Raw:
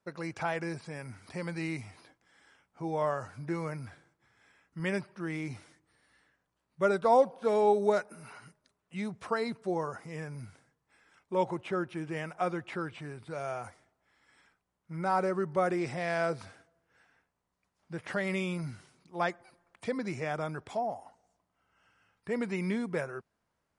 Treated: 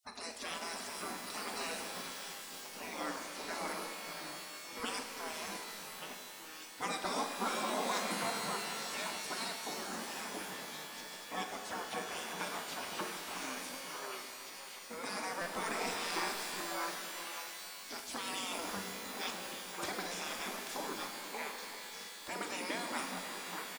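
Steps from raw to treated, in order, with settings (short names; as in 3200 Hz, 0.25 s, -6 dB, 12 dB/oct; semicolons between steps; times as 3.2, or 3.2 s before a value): on a send: delay with a stepping band-pass 0.584 s, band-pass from 710 Hz, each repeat 1.4 oct, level -0.5 dB; on the sum: spectral gate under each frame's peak -20 dB weak; resonant low shelf 160 Hz -6 dB, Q 3; doubler 44 ms -12 dB; in parallel at 0 dB: compressor, threshold -58 dBFS, peak gain reduction 18.5 dB; on the sum: bell 2100 Hz -6.5 dB 1.3 oct; stuck buffer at 15.41/20.06, samples 256, times 8; shimmer reverb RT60 3.3 s, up +12 st, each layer -2 dB, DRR 5 dB; gain +7 dB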